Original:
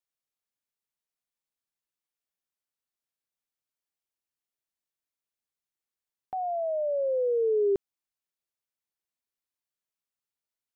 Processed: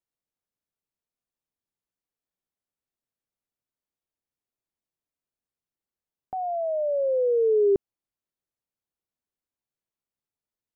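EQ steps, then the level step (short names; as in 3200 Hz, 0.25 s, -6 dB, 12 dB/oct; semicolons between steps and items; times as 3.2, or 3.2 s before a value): tilt shelf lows +6.5 dB, about 940 Hz; 0.0 dB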